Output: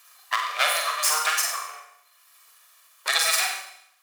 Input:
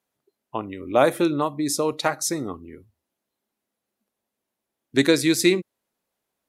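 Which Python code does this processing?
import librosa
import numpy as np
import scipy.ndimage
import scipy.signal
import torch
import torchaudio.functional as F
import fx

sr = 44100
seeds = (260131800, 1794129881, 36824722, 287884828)

y = fx.lower_of_two(x, sr, delay_ms=1.7)
y = fx.stretch_grains(y, sr, factor=0.62, grain_ms=143.0)
y = fx.rider(y, sr, range_db=5, speed_s=2.0)
y = scipy.signal.sosfilt(scipy.signal.cheby1(3, 1.0, 1100.0, 'highpass', fs=sr, output='sos'), y)
y = fx.doubler(y, sr, ms=43.0, db=-4.5)
y = fx.rev_schroeder(y, sr, rt60_s=0.56, comb_ms=32, drr_db=3.0)
y = fx.band_squash(y, sr, depth_pct=70)
y = F.gain(torch.from_numpy(y), 6.5).numpy()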